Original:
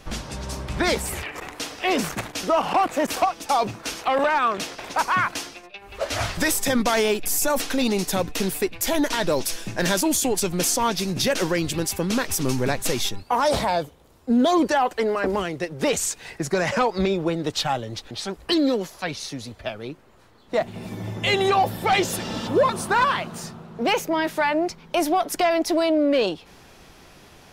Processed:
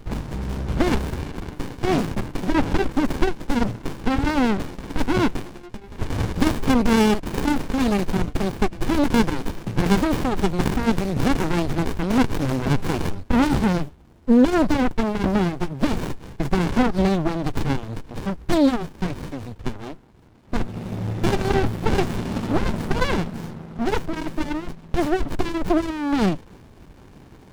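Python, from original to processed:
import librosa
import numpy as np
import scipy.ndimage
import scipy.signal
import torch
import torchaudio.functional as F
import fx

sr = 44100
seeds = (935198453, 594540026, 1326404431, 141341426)

y = fx.tracing_dist(x, sr, depth_ms=0.097)
y = fx.running_max(y, sr, window=65)
y = F.gain(torch.from_numpy(y), 6.0).numpy()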